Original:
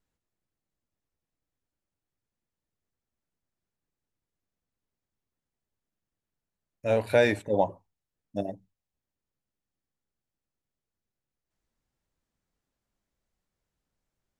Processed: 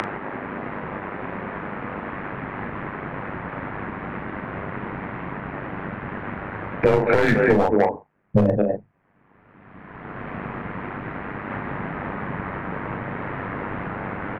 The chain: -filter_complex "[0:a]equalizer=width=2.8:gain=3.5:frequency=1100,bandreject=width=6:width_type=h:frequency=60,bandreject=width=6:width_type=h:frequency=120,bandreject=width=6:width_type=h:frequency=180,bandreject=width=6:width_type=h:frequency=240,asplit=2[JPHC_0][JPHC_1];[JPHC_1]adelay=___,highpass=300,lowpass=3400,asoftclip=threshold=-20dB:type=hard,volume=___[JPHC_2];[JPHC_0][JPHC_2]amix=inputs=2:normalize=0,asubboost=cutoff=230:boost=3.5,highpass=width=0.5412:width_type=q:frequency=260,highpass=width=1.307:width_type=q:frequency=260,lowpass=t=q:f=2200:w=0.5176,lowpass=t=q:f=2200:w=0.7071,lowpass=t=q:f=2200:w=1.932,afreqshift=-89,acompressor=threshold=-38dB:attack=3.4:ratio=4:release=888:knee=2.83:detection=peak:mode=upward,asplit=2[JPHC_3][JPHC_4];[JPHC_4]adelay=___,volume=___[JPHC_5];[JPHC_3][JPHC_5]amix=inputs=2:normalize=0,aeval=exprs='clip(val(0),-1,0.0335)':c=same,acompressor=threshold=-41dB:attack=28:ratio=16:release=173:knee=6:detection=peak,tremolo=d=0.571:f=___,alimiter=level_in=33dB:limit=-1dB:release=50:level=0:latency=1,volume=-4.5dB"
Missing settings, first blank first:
210, -10dB, 38, -8dB, 98